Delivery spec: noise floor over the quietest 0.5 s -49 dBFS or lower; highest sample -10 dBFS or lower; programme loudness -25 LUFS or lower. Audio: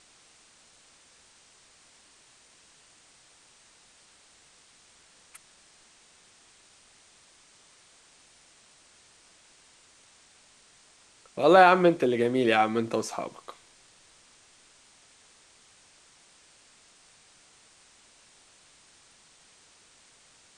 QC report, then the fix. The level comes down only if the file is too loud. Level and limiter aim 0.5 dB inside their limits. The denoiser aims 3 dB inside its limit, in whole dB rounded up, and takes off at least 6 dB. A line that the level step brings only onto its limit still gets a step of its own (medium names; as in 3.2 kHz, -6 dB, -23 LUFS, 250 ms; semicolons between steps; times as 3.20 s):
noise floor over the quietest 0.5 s -59 dBFS: pass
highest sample -4.0 dBFS: fail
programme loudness -22.5 LUFS: fail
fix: trim -3 dB; peak limiter -10.5 dBFS